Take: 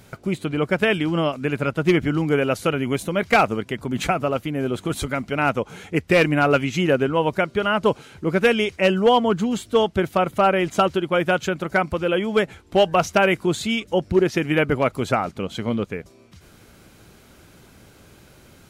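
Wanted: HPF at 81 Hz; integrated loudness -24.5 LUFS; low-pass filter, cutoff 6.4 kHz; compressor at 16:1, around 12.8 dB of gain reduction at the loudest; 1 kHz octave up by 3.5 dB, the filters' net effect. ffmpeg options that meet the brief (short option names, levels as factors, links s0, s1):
-af "highpass=81,lowpass=6400,equalizer=f=1000:t=o:g=5,acompressor=threshold=0.0708:ratio=16,volume=1.68"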